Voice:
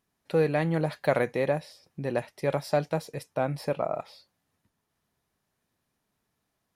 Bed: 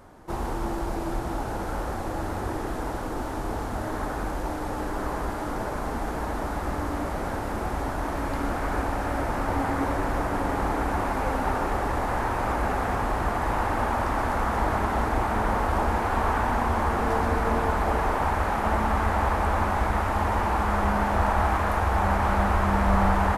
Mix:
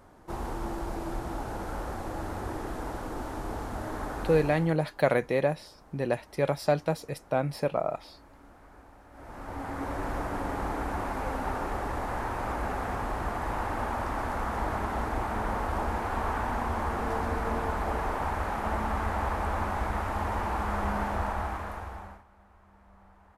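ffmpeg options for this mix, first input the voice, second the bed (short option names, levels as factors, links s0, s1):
-filter_complex "[0:a]adelay=3950,volume=1.06[s0];[1:a]volume=5.62,afade=t=out:st=4.38:d=0.39:silence=0.0891251,afade=t=in:st=9.11:d=0.97:silence=0.1,afade=t=out:st=21.02:d=1.22:silence=0.0316228[s1];[s0][s1]amix=inputs=2:normalize=0"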